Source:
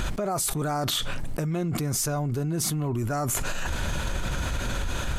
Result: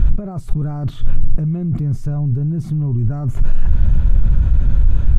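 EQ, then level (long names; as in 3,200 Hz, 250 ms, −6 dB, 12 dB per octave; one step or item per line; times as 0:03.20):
bass and treble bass +13 dB, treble −6 dB
spectral tilt −3 dB per octave
−9.0 dB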